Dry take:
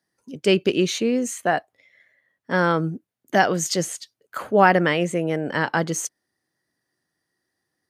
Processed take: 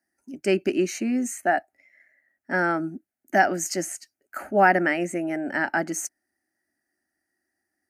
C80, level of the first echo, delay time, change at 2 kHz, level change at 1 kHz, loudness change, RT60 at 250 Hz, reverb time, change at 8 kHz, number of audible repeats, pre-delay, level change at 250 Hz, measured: no reverb audible, no echo audible, no echo audible, −0.5 dB, −1.5 dB, −3.0 dB, no reverb audible, no reverb audible, −3.0 dB, no echo audible, no reverb audible, −2.5 dB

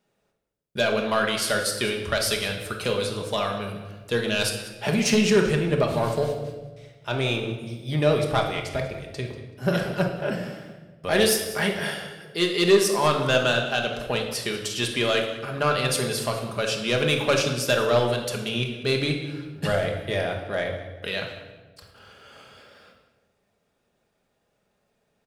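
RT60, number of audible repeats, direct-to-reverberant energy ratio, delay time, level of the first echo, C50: 1.3 s, 1, 1.5 dB, 190 ms, −16.0 dB, 5.5 dB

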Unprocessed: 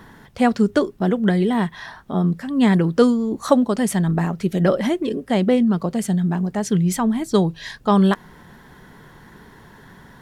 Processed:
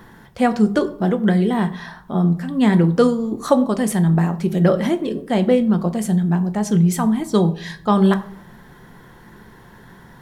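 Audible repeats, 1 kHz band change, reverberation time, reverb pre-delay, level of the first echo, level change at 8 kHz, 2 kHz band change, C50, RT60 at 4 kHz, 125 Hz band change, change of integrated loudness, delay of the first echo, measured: no echo audible, +1.0 dB, 0.65 s, 6 ms, no echo audible, 0.0 dB, 0.0 dB, 15.5 dB, 0.35 s, +3.0 dB, +1.5 dB, no echo audible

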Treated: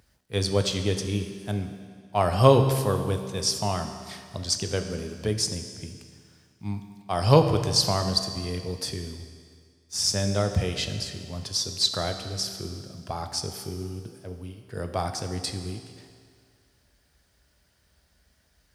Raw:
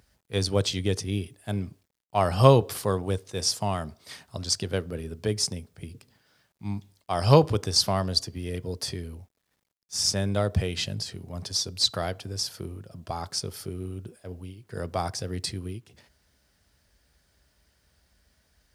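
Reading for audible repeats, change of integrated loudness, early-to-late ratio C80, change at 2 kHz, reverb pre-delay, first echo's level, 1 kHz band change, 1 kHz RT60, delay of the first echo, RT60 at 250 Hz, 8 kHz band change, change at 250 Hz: no echo audible, +0.5 dB, 9.0 dB, +1.0 dB, 15 ms, no echo audible, +1.0 dB, 2.0 s, no echo audible, 2.0 s, +1.0 dB, +1.0 dB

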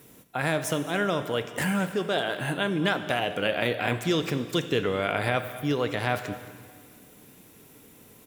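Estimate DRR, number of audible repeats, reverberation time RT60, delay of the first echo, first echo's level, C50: 9.0 dB, 1, 1.9 s, 218 ms, −19.0 dB, 10.5 dB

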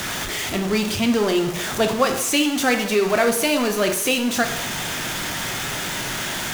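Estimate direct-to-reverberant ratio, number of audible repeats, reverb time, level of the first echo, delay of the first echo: 4.5 dB, no echo audible, 0.75 s, no echo audible, no echo audible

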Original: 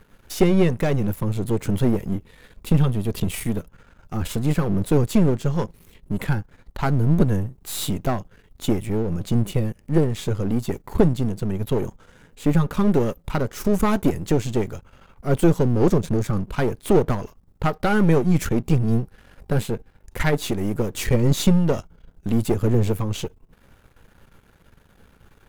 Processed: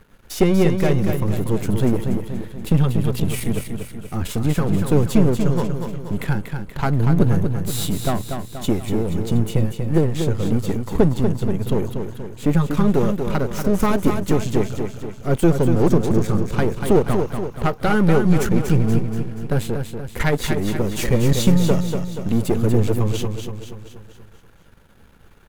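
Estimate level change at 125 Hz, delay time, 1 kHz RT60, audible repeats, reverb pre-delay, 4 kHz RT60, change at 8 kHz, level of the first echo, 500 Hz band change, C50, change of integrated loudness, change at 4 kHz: +2.5 dB, 239 ms, no reverb audible, 6, no reverb audible, no reverb audible, +2.0 dB, −6.5 dB, +2.0 dB, no reverb audible, +2.0 dB, +2.0 dB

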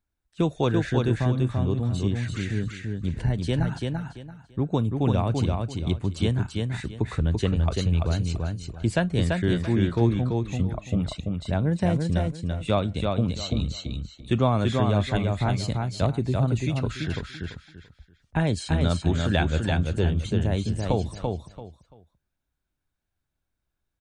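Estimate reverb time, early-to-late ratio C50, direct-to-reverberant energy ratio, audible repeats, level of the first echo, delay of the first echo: no reverb audible, no reverb audible, no reverb audible, 3, −3.5 dB, 338 ms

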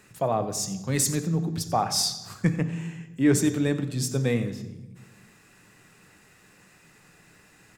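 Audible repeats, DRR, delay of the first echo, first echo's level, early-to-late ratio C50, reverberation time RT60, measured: 1, 9.5 dB, 91 ms, −17.0 dB, 11.5 dB, 1.1 s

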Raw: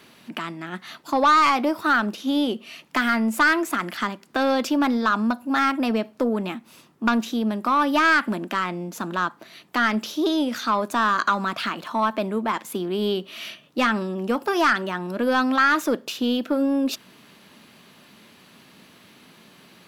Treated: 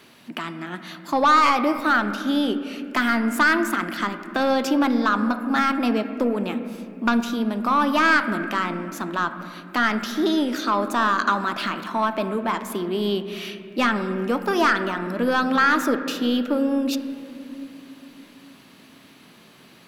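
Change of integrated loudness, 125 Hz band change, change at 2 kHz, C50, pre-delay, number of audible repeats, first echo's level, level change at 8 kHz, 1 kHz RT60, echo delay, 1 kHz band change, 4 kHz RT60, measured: +0.5 dB, +0.5 dB, +0.5 dB, 10.0 dB, 3 ms, no echo audible, no echo audible, 0.0 dB, 2.2 s, no echo audible, +0.5 dB, 1.8 s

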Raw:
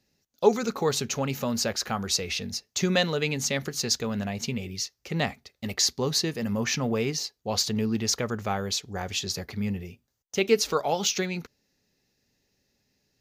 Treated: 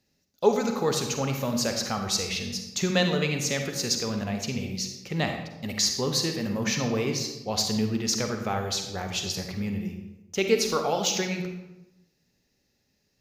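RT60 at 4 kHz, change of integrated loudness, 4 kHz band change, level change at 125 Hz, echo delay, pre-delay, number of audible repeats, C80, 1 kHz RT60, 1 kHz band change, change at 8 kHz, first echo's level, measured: 0.65 s, 0.0 dB, 0.0 dB, +1.0 dB, no echo audible, 39 ms, no echo audible, 8.0 dB, 0.90 s, +0.5 dB, 0.0 dB, no echo audible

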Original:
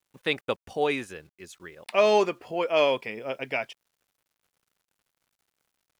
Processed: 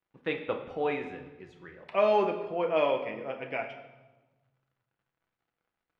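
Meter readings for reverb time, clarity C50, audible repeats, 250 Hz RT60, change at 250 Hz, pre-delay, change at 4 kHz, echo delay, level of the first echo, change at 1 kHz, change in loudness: 1.2 s, 8.5 dB, no echo audible, 1.6 s, −2.5 dB, 6 ms, −10.5 dB, no echo audible, no echo audible, −2.5 dB, −3.5 dB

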